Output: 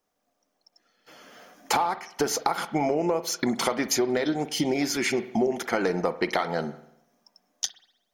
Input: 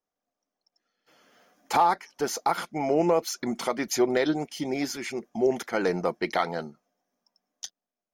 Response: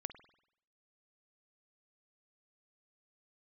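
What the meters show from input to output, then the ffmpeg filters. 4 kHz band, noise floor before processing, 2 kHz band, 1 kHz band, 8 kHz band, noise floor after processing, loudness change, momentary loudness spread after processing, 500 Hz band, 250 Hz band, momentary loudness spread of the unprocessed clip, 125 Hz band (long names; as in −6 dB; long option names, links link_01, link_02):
+5.0 dB, below −85 dBFS, +2.5 dB, −1.5 dB, +5.0 dB, −77 dBFS, +0.5 dB, 6 LU, −0.5 dB, +1.5 dB, 12 LU, +2.0 dB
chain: -filter_complex "[0:a]acompressor=threshold=-32dB:ratio=12,asplit=2[link_01][link_02];[1:a]atrim=start_sample=2205[link_03];[link_02][link_03]afir=irnorm=-1:irlink=0,volume=11dB[link_04];[link_01][link_04]amix=inputs=2:normalize=0"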